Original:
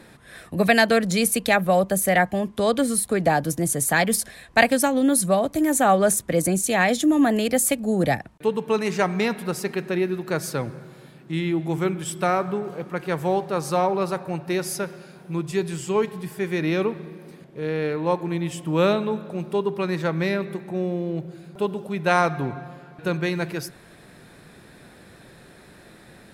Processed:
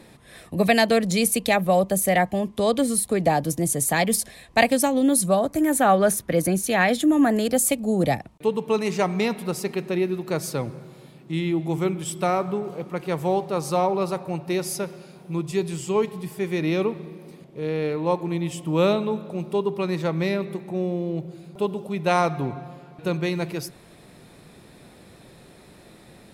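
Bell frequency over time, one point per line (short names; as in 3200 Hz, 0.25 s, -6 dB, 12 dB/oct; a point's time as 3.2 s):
bell -9 dB 0.43 oct
5.24 s 1500 Hz
5.83 s 7800 Hz
6.87 s 7800 Hz
7.66 s 1600 Hz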